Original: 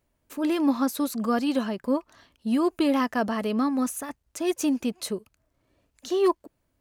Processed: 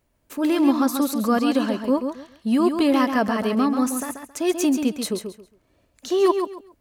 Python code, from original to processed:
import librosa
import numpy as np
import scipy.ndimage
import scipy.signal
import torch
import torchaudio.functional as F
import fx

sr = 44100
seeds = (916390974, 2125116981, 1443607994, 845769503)

y = fx.echo_feedback(x, sr, ms=136, feedback_pct=22, wet_db=-7)
y = y * 10.0 ** (4.0 / 20.0)